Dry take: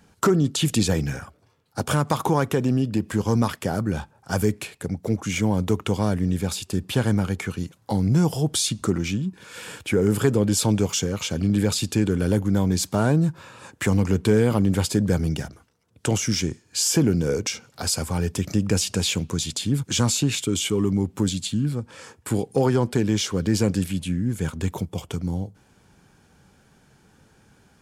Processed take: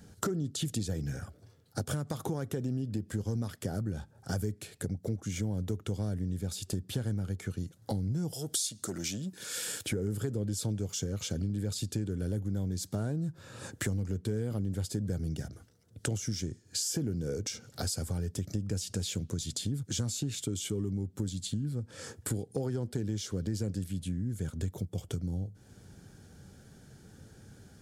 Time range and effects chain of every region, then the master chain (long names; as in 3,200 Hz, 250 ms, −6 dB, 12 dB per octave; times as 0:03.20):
0:08.33–0:09.86: high-pass filter 430 Hz 6 dB per octave + high-shelf EQ 3,400 Hz +9.5 dB + saturating transformer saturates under 1,800 Hz
whole clip: graphic EQ with 15 bands 100 Hz +6 dB, 1,000 Hz −12 dB, 2,500 Hz −9 dB; downward compressor 4 to 1, threshold −36 dBFS; level +2.5 dB